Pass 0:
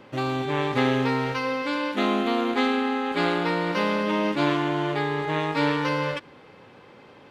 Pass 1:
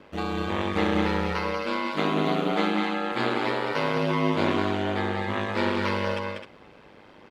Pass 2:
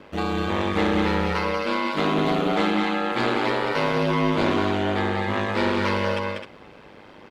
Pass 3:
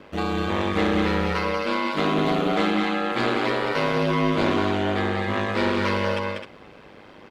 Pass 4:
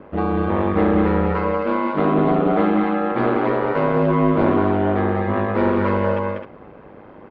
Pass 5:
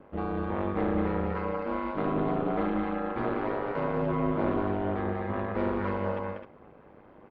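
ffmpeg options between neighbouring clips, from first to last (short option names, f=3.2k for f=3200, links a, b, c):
-af "aecho=1:1:192.4|259.5:0.562|0.355,aeval=exprs='val(0)*sin(2*PI*50*n/s)':c=same"
-af "asoftclip=type=tanh:threshold=-17.5dB,volume=4.5dB"
-af "bandreject=f=880:w=24"
-af "lowpass=1.2k,volume=5.5dB"
-af "tremolo=f=290:d=0.571,volume=-8.5dB"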